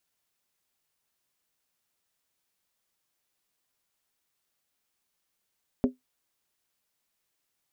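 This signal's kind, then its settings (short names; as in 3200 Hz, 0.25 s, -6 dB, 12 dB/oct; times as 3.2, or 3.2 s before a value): skin hit, lowest mode 254 Hz, decay 0.15 s, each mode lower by 6.5 dB, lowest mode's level -16 dB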